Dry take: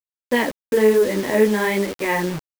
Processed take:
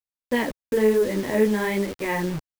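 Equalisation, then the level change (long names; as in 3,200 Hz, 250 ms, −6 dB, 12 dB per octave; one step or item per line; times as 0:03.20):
low-shelf EQ 150 Hz +10.5 dB
−5.5 dB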